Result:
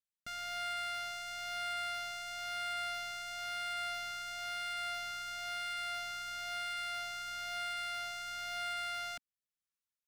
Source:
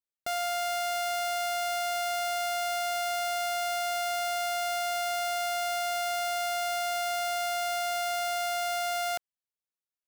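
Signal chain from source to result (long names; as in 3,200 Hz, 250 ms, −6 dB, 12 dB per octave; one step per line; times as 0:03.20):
flat-topped bell 530 Hz −15.5 dB
rotating-speaker cabinet horn 1 Hz
slew-rate limiting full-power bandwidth 61 Hz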